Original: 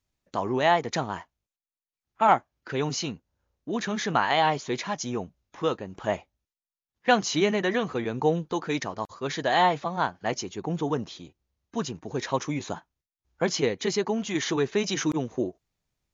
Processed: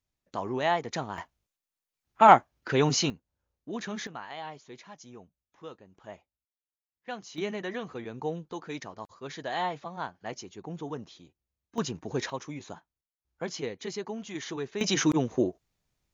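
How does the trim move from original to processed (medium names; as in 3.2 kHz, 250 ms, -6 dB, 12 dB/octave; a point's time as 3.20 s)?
-5 dB
from 1.18 s +4 dB
from 3.10 s -6.5 dB
from 4.07 s -17.5 dB
from 7.38 s -9.5 dB
from 11.78 s -0.5 dB
from 12.30 s -9.5 dB
from 14.81 s +2 dB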